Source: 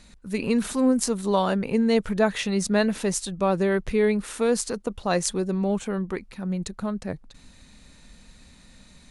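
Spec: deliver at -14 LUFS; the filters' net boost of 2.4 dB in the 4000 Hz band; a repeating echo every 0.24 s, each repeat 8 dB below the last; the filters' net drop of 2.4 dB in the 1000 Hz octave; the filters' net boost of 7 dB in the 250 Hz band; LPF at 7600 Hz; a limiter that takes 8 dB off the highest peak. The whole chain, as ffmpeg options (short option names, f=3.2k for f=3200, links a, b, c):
-af "lowpass=7.6k,equalizer=f=250:t=o:g=8.5,equalizer=f=1k:t=o:g=-4,equalizer=f=4k:t=o:g=3.5,alimiter=limit=-13.5dB:level=0:latency=1,aecho=1:1:240|480|720|960|1200:0.398|0.159|0.0637|0.0255|0.0102,volume=8.5dB"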